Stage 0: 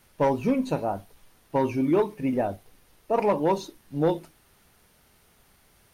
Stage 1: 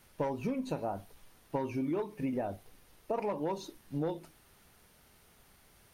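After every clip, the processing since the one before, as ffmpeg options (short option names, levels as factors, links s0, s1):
-af "acompressor=threshold=0.0355:ratio=6,volume=0.794"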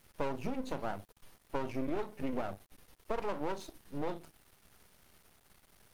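-af "aeval=exprs='max(val(0),0)':c=same,volume=1.26"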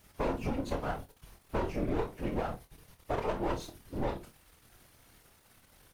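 -filter_complex "[0:a]afftfilt=real='hypot(re,im)*cos(2*PI*random(0))':imag='hypot(re,im)*sin(2*PI*random(1))':win_size=512:overlap=0.75,asplit=2[s0][s1];[s1]aecho=0:1:26|49:0.398|0.211[s2];[s0][s2]amix=inputs=2:normalize=0,volume=2.66"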